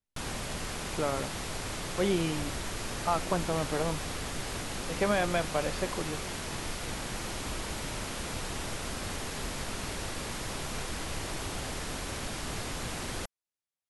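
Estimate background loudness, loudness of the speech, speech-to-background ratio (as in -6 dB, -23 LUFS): -36.0 LUFS, -32.5 LUFS, 3.5 dB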